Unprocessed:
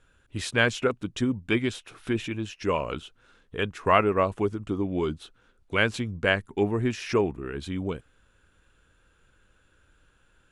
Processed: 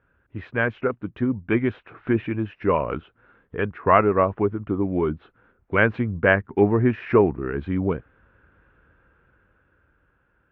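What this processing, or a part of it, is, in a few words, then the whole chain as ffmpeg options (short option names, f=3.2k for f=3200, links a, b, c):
action camera in a waterproof case: -af "highpass=50,lowpass=f=2k:w=0.5412,lowpass=f=2k:w=1.3066,dynaudnorm=f=240:g=13:m=8.5dB" -ar 22050 -c:a aac -b:a 96k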